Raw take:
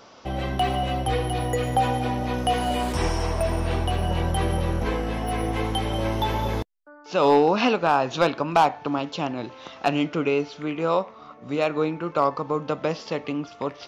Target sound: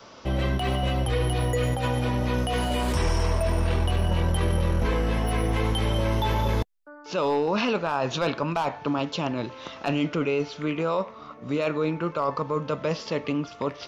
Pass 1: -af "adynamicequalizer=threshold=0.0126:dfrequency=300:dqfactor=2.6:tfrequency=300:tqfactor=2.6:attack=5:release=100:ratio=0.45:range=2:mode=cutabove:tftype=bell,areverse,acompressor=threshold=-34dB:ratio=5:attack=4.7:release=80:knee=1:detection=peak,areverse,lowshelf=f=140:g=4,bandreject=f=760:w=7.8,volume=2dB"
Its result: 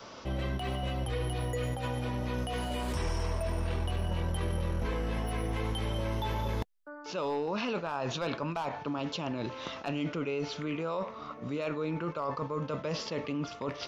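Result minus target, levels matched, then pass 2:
compressor: peak gain reduction +8.5 dB
-af "adynamicequalizer=threshold=0.0126:dfrequency=300:dqfactor=2.6:tfrequency=300:tqfactor=2.6:attack=5:release=100:ratio=0.45:range=2:mode=cutabove:tftype=bell,areverse,acompressor=threshold=-23.5dB:ratio=5:attack=4.7:release=80:knee=1:detection=peak,areverse,lowshelf=f=140:g=4,bandreject=f=760:w=7.8,volume=2dB"

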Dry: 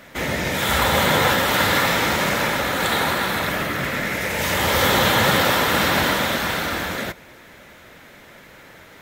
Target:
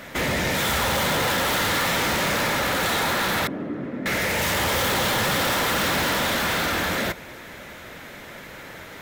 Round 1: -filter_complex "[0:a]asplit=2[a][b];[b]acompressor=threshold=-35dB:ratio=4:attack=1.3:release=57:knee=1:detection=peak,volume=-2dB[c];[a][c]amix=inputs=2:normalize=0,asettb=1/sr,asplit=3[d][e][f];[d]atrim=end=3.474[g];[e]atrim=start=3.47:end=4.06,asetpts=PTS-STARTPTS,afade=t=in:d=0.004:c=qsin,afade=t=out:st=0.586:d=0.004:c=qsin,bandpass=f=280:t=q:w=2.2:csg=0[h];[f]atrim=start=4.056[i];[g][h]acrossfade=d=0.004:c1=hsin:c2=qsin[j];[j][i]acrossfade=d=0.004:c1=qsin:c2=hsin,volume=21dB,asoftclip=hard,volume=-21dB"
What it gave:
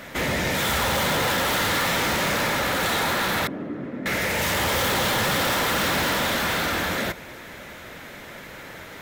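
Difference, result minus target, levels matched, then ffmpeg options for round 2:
compressor: peak gain reduction +7 dB
-filter_complex "[0:a]asplit=2[a][b];[b]acompressor=threshold=-25.5dB:ratio=4:attack=1.3:release=57:knee=1:detection=peak,volume=-2dB[c];[a][c]amix=inputs=2:normalize=0,asettb=1/sr,asplit=3[d][e][f];[d]atrim=end=3.474[g];[e]atrim=start=3.47:end=4.06,asetpts=PTS-STARTPTS,afade=t=in:d=0.004:c=qsin,afade=t=out:st=0.586:d=0.004:c=qsin,bandpass=f=280:t=q:w=2.2:csg=0[h];[f]atrim=start=4.056[i];[g][h]acrossfade=d=0.004:c1=hsin:c2=qsin[j];[j][i]acrossfade=d=0.004:c1=qsin:c2=hsin,volume=21dB,asoftclip=hard,volume=-21dB"

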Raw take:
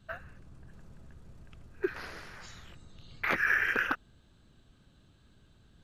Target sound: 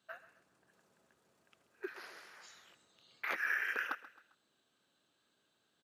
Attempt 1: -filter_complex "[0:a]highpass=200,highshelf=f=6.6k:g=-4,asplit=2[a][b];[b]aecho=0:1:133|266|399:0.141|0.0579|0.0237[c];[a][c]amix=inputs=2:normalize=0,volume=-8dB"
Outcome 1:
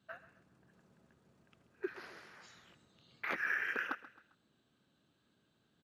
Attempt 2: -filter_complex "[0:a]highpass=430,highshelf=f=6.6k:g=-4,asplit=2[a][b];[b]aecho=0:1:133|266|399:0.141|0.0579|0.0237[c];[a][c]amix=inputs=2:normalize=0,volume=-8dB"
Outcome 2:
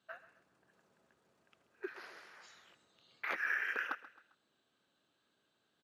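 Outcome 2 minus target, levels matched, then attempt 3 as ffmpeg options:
8000 Hz band -4.0 dB
-filter_complex "[0:a]highpass=430,highshelf=f=6.6k:g=5.5,asplit=2[a][b];[b]aecho=0:1:133|266|399:0.141|0.0579|0.0237[c];[a][c]amix=inputs=2:normalize=0,volume=-8dB"

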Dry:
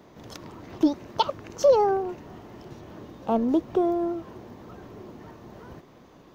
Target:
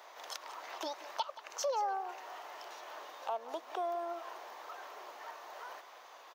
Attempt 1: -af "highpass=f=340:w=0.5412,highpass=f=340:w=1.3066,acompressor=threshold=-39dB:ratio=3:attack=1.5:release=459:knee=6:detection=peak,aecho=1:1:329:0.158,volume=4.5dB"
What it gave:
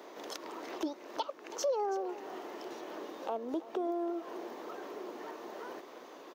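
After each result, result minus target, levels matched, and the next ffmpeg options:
echo 0.151 s late; 250 Hz band +13.5 dB
-af "highpass=f=340:w=0.5412,highpass=f=340:w=1.3066,acompressor=threshold=-39dB:ratio=3:attack=1.5:release=459:knee=6:detection=peak,aecho=1:1:178:0.158,volume=4.5dB"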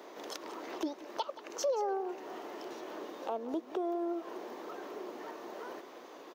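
250 Hz band +13.5 dB
-af "highpass=f=690:w=0.5412,highpass=f=690:w=1.3066,acompressor=threshold=-39dB:ratio=3:attack=1.5:release=459:knee=6:detection=peak,aecho=1:1:178:0.158,volume=4.5dB"

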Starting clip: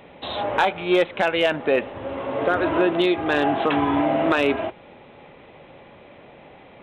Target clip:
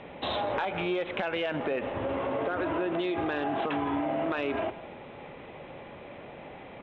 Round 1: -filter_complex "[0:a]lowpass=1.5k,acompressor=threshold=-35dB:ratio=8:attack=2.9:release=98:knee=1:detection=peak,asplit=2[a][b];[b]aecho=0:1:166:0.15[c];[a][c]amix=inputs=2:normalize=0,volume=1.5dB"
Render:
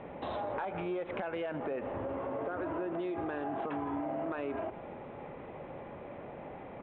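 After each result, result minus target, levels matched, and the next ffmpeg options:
4000 Hz band -8.5 dB; compressor: peak gain reduction +5.5 dB
-filter_complex "[0:a]lowpass=3.7k,acompressor=threshold=-35dB:ratio=8:attack=2.9:release=98:knee=1:detection=peak,asplit=2[a][b];[b]aecho=0:1:166:0.15[c];[a][c]amix=inputs=2:normalize=0,volume=1.5dB"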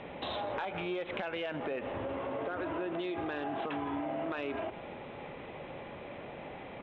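compressor: peak gain reduction +6 dB
-filter_complex "[0:a]lowpass=3.7k,acompressor=threshold=-28dB:ratio=8:attack=2.9:release=98:knee=1:detection=peak,asplit=2[a][b];[b]aecho=0:1:166:0.15[c];[a][c]amix=inputs=2:normalize=0,volume=1.5dB"

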